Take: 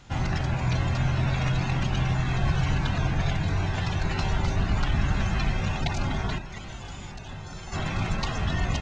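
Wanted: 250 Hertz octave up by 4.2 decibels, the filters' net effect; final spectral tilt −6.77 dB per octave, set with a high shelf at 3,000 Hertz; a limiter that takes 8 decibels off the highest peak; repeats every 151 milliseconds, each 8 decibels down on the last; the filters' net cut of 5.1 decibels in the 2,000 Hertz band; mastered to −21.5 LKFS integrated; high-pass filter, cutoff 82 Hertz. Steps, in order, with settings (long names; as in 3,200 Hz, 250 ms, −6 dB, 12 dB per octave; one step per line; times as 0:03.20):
high-pass filter 82 Hz
parametric band 250 Hz +7 dB
parametric band 2,000 Hz −4.5 dB
high-shelf EQ 3,000 Hz −6 dB
brickwall limiter −22 dBFS
repeating echo 151 ms, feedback 40%, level −8 dB
level +9 dB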